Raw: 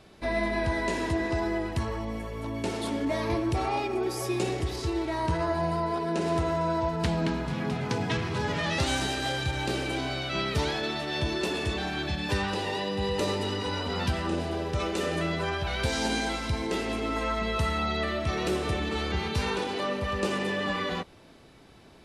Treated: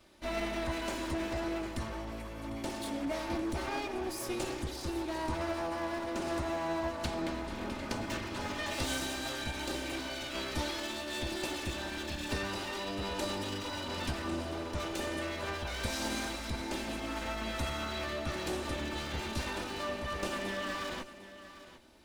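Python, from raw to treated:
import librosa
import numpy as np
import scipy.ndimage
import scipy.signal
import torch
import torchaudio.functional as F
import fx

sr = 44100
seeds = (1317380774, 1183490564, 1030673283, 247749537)

y = fx.lower_of_two(x, sr, delay_ms=3.3)
y = fx.high_shelf(y, sr, hz=6300.0, db=5.0)
y = y + 10.0 ** (-14.5 / 20.0) * np.pad(y, (int(751 * sr / 1000.0), 0))[:len(y)]
y = y * 10.0 ** (-6.0 / 20.0)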